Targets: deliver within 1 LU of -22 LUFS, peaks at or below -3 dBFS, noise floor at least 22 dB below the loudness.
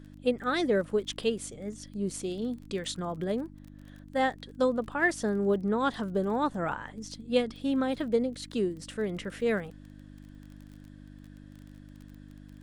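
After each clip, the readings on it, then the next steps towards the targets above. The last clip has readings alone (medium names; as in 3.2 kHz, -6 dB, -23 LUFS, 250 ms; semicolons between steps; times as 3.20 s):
tick rate 26 per s; hum 50 Hz; highest harmonic 300 Hz; hum level -45 dBFS; loudness -30.5 LUFS; peak level -13.0 dBFS; loudness target -22.0 LUFS
-> de-click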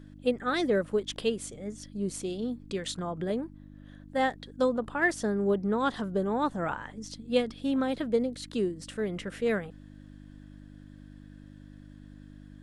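tick rate 0 per s; hum 50 Hz; highest harmonic 300 Hz; hum level -45 dBFS
-> de-hum 50 Hz, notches 6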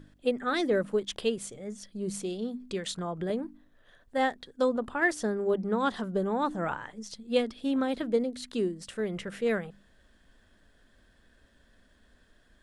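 hum not found; loudness -31.0 LUFS; peak level -13.5 dBFS; loudness target -22.0 LUFS
-> trim +9 dB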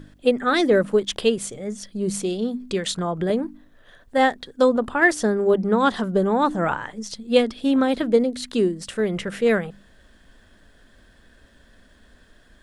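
loudness -22.0 LUFS; peak level -4.5 dBFS; noise floor -55 dBFS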